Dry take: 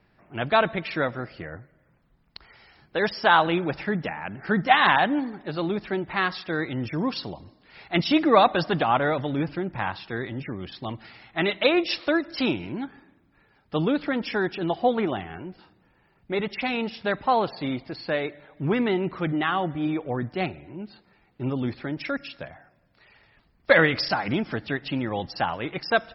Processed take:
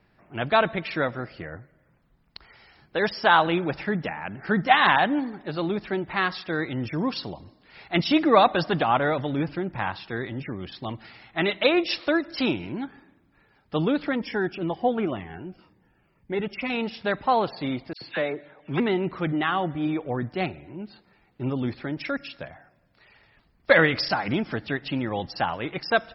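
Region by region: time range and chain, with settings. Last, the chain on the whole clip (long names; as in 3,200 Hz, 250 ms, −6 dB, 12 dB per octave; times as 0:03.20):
0:14.15–0:16.70: parametric band 4,000 Hz −14.5 dB 0.3 octaves + phaser whose notches keep moving one way falling 2 Hz
0:17.93–0:18.80: low-pass filter 5,000 Hz + low-shelf EQ 93 Hz −11 dB + all-pass dispersion lows, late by 85 ms, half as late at 1,900 Hz
whole clip: no processing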